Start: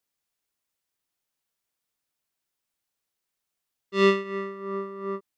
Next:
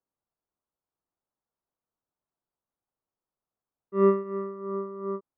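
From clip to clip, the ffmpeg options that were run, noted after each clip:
-af "lowpass=f=1.2k:w=0.5412,lowpass=f=1.2k:w=1.3066"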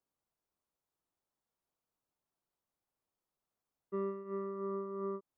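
-af "acompressor=threshold=-35dB:ratio=10"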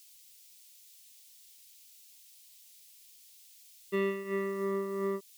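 -af "aexciter=amount=14.5:drive=8.3:freq=2.1k,volume=6dB"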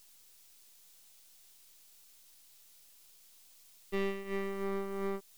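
-af "aeval=exprs='if(lt(val(0),0),0.251*val(0),val(0))':c=same"

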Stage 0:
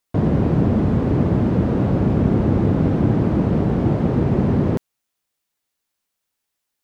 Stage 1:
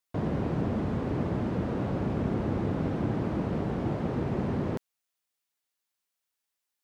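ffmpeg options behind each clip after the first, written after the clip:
-af "lowshelf=f=480:g=-7.5,volume=-6dB"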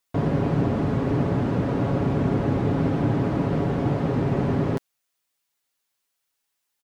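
-af "aecho=1:1:7.2:0.43,volume=6dB"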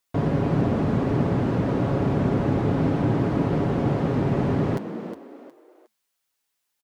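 -filter_complex "[0:a]asplit=4[a][b][c][d];[b]adelay=362,afreqshift=71,volume=-10.5dB[e];[c]adelay=724,afreqshift=142,volume=-20.7dB[f];[d]adelay=1086,afreqshift=213,volume=-30.8dB[g];[a][e][f][g]amix=inputs=4:normalize=0"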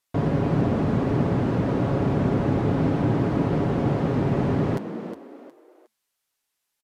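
-af "aresample=32000,aresample=44100"

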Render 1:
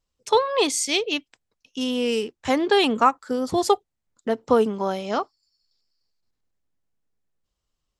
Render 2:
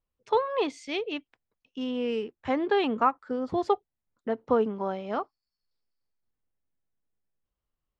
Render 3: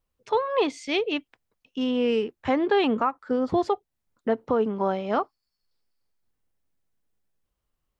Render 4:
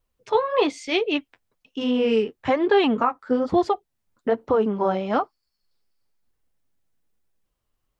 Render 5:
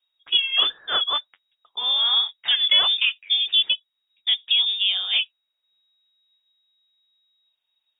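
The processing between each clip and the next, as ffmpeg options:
-af "lowpass=2.3k,volume=-5.5dB"
-af "alimiter=limit=-19dB:level=0:latency=1:release=257,volume=6dB"
-af "flanger=delay=1.8:depth=9.2:regen=-35:speed=1.1:shape=triangular,volume=6.5dB"
-af "lowpass=f=3.2k:t=q:w=0.5098,lowpass=f=3.2k:t=q:w=0.6013,lowpass=f=3.2k:t=q:w=0.9,lowpass=f=3.2k:t=q:w=2.563,afreqshift=-3800"

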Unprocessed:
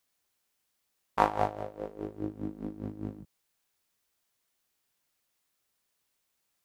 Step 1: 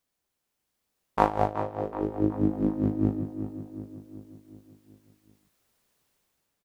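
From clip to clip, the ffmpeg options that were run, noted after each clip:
-filter_complex "[0:a]dynaudnorm=f=270:g=5:m=10dB,tiltshelf=f=800:g=4,asplit=2[a][b];[b]adelay=374,lowpass=f=3.1k:p=1,volume=-10dB,asplit=2[c][d];[d]adelay=374,lowpass=f=3.1k:p=1,volume=0.55,asplit=2[e][f];[f]adelay=374,lowpass=f=3.1k:p=1,volume=0.55,asplit=2[g][h];[h]adelay=374,lowpass=f=3.1k:p=1,volume=0.55,asplit=2[i][j];[j]adelay=374,lowpass=f=3.1k:p=1,volume=0.55,asplit=2[k][l];[l]adelay=374,lowpass=f=3.1k:p=1,volume=0.55[m];[c][e][g][i][k][m]amix=inputs=6:normalize=0[n];[a][n]amix=inputs=2:normalize=0,volume=-1dB"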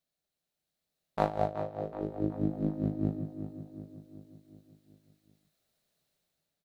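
-af "equalizer=f=160:t=o:w=0.33:g=10,equalizer=f=630:t=o:w=0.33:g=8,equalizer=f=1k:t=o:w=0.33:g=-7,equalizer=f=4k:t=o:w=0.33:g=8,volume=-7.5dB"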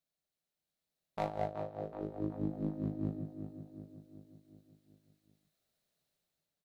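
-af "asoftclip=type=tanh:threshold=-18dB,volume=-4.5dB"

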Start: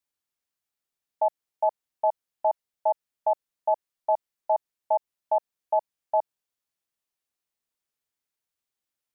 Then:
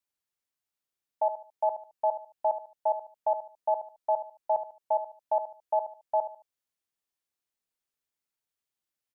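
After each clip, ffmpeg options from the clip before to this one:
-af "aecho=1:1:73|146|219:0.282|0.0846|0.0254,volume=-3dB"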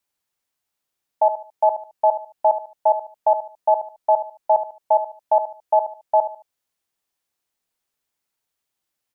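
-af "equalizer=f=800:t=o:w=0.77:g=2.5,volume=8dB"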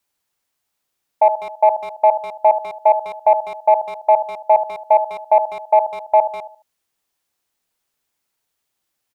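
-filter_complex "[0:a]acontrast=24,asplit=2[a][b];[b]adelay=200,highpass=300,lowpass=3.4k,asoftclip=type=hard:threshold=-13dB,volume=-13dB[c];[a][c]amix=inputs=2:normalize=0"

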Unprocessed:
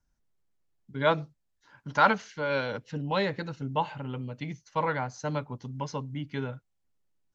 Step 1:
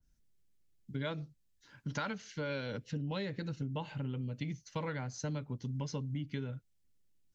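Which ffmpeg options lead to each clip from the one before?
-af "equalizer=f=910:w=0.78:g=-13,acompressor=threshold=-38dB:ratio=10,adynamicequalizer=threshold=0.00112:dfrequency=1700:dqfactor=0.7:tfrequency=1700:tqfactor=0.7:attack=5:release=100:ratio=0.375:range=1.5:mode=cutabove:tftype=highshelf,volume=4dB"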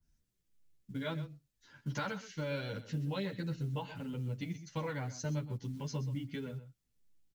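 -filter_complex "[0:a]acrusher=bits=8:mode=log:mix=0:aa=0.000001,aecho=1:1:126:0.211,asplit=2[a][b];[b]adelay=9.5,afreqshift=-1.7[c];[a][c]amix=inputs=2:normalize=1,volume=2.5dB"

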